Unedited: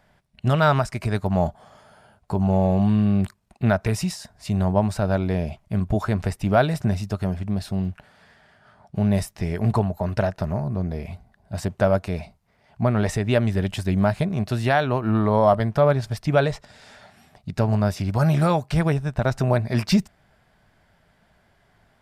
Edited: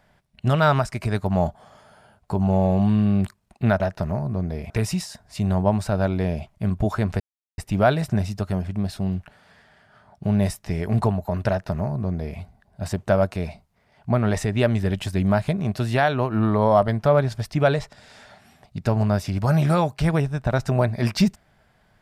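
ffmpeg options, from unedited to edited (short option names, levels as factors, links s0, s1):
-filter_complex "[0:a]asplit=4[s0][s1][s2][s3];[s0]atrim=end=3.802[s4];[s1]atrim=start=10.208:end=11.112[s5];[s2]atrim=start=3.798:end=6.3,asetpts=PTS-STARTPTS,afade=t=out:st=2.498:d=0.004:c=hsin,apad=pad_dur=0.38[s6];[s3]atrim=start=6.3,asetpts=PTS-STARTPTS,afade=t=in:d=0.004:c=hsin[s7];[s4][s5]acrossfade=d=0.004:c1=hsin:c2=hsin[s8];[s6][s7]concat=n=2:v=0:a=1[s9];[s8][s9]acrossfade=d=0.004:c1=hsin:c2=hsin"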